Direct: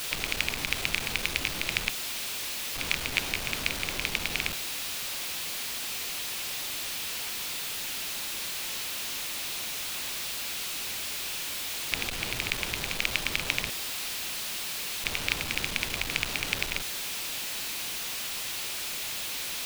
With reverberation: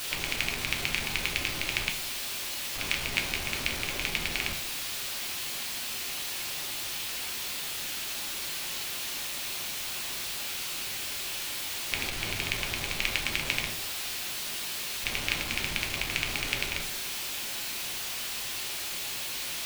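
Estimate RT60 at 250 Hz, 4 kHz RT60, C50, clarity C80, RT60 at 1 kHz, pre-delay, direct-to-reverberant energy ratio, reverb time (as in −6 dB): 0.65 s, 0.40 s, 10.0 dB, 13.5 dB, 0.55 s, 3 ms, 3.0 dB, 0.55 s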